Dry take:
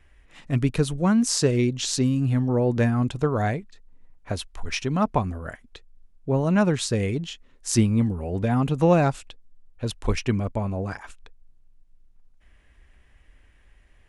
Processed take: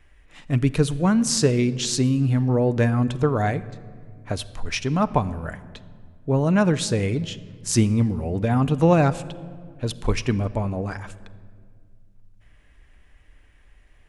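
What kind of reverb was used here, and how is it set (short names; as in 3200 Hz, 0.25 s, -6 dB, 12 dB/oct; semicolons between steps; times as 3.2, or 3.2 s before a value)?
shoebox room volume 3500 m³, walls mixed, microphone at 0.43 m; gain +1.5 dB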